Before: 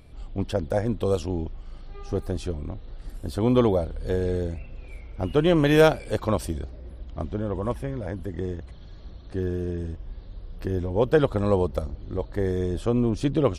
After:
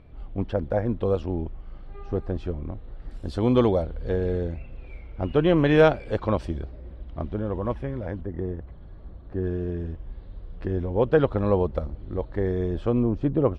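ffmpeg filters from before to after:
-af "asetnsamples=n=441:p=0,asendcmd='3.11 lowpass f 5500;3.82 lowpass f 3000;8.21 lowpass f 1500;9.44 lowpass f 2700;13.03 lowpass f 1300',lowpass=2.2k"

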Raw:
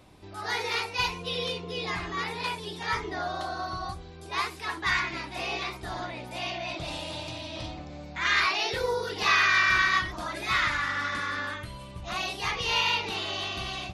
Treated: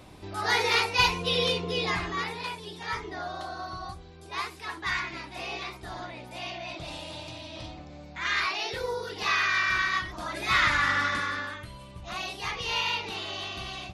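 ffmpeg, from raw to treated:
-af "volume=14dB,afade=t=out:st=1.65:d=0.81:silence=0.354813,afade=t=in:st=10.07:d=0.83:silence=0.375837,afade=t=out:st=10.9:d=0.6:silence=0.398107"

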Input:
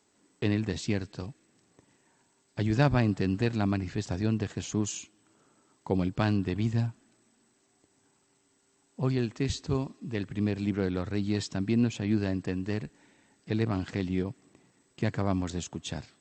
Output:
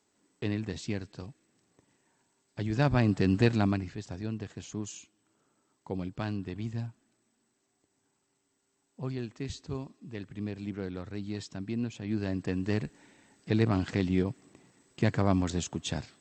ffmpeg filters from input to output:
-af "volume=14dB,afade=t=in:st=2.71:d=0.74:silence=0.375837,afade=t=out:st=3.45:d=0.51:silence=0.266073,afade=t=in:st=12.01:d=0.77:silence=0.316228"

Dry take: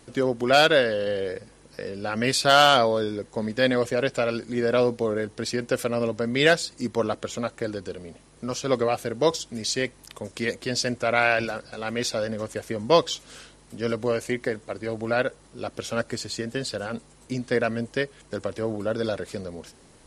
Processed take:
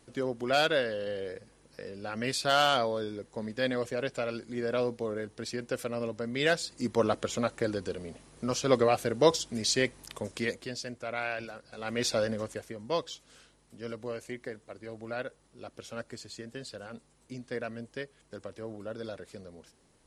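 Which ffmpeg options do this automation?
-af "volume=11dB,afade=t=in:st=6.46:d=0.63:silence=0.421697,afade=t=out:st=10.2:d=0.57:silence=0.251189,afade=t=in:st=11.63:d=0.55:silence=0.251189,afade=t=out:st=12.18:d=0.57:silence=0.266073"

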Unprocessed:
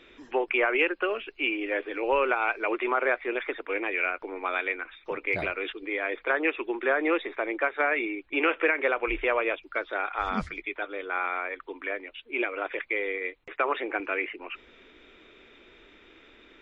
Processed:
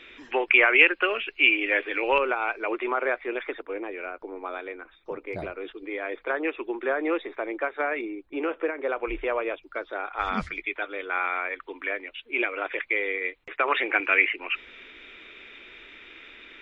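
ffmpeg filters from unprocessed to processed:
-af "asetnsamples=n=441:p=0,asendcmd='2.18 equalizer g -2;3.62 equalizer g -12.5;5.74 equalizer g -5;8.01 equalizer g -13;8.89 equalizer g -6;10.19 equalizer g 4;13.68 equalizer g 11.5',equalizer=f=2.4k:t=o:w=1.7:g=9.5"

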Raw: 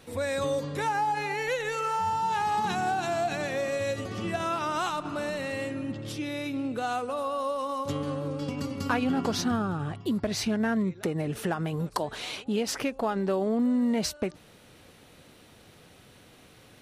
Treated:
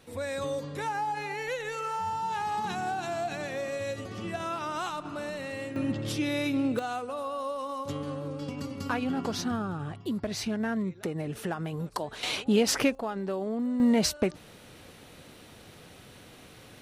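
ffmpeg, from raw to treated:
-af "asetnsamples=n=441:p=0,asendcmd='5.76 volume volume 4dB;6.79 volume volume -3.5dB;12.23 volume volume 5dB;12.95 volume volume -5dB;13.8 volume volume 3.5dB',volume=-4dB"

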